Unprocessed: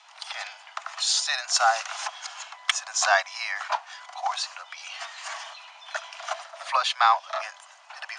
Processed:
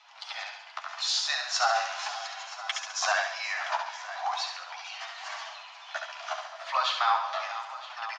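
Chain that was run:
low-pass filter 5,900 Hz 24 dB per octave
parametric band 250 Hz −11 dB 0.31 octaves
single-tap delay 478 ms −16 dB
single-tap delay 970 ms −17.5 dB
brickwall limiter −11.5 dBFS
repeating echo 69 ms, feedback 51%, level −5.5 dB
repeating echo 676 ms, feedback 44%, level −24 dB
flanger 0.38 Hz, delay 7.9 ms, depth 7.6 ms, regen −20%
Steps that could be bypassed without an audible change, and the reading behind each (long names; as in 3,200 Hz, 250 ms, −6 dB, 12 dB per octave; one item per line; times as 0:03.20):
parametric band 250 Hz: nothing at its input below 510 Hz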